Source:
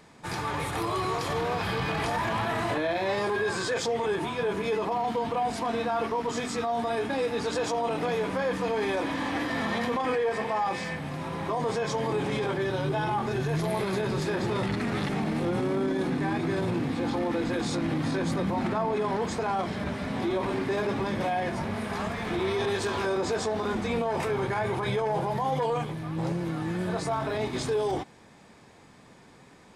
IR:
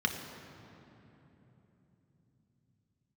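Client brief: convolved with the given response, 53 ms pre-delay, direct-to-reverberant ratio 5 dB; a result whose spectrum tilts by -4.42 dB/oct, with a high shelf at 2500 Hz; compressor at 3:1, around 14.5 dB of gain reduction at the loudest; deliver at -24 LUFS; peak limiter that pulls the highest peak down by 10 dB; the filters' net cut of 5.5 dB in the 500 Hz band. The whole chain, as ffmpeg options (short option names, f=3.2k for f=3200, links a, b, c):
-filter_complex "[0:a]equalizer=f=500:t=o:g=-7.5,highshelf=f=2.5k:g=8.5,acompressor=threshold=-46dB:ratio=3,alimiter=level_in=15.5dB:limit=-24dB:level=0:latency=1,volume=-15.5dB,asplit=2[a][b];[1:a]atrim=start_sample=2205,adelay=53[c];[b][c]afir=irnorm=-1:irlink=0,volume=-13dB[d];[a][d]amix=inputs=2:normalize=0,volume=22dB"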